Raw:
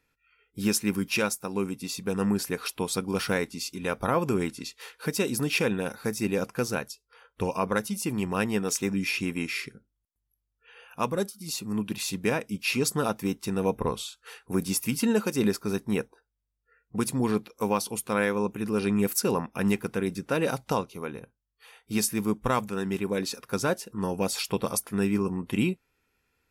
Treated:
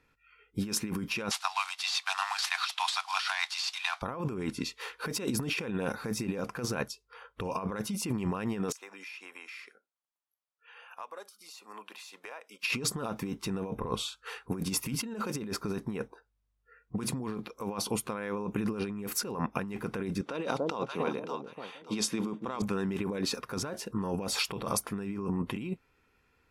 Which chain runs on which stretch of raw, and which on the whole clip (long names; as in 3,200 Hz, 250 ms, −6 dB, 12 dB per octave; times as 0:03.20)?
0:01.31–0:04.02: variable-slope delta modulation 64 kbit/s + Butterworth high-pass 700 Hz 96 dB per octave + parametric band 4,000 Hz +13.5 dB 1.6 octaves
0:08.72–0:12.63: four-pole ladder high-pass 510 Hz, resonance 20% + downward compressor 4 to 1, threshold −47 dBFS
0:20.21–0:22.62: loudspeaker in its box 220–9,800 Hz, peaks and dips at 1,700 Hz −4 dB, 3,500 Hz +6 dB, 9,000 Hz −5 dB + delay that swaps between a low-pass and a high-pass 288 ms, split 830 Hz, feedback 51%, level −9 dB
whole clip: low-pass filter 3,300 Hz 6 dB per octave; parametric band 1,100 Hz +3.5 dB 0.42 octaves; compressor whose output falls as the input rises −33 dBFS, ratio −1